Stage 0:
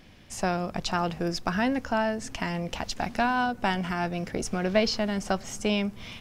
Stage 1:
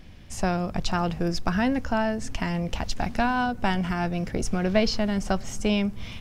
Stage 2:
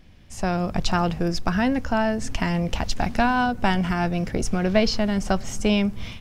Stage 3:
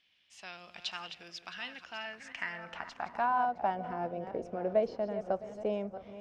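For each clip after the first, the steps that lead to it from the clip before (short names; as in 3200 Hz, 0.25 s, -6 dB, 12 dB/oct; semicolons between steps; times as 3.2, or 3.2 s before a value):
low shelf 130 Hz +12 dB
AGC gain up to 9 dB; gain -4.5 dB
regenerating reverse delay 0.332 s, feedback 43%, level -11 dB; band-pass sweep 3100 Hz -> 550 Hz, 1.78–3.98; gain -4 dB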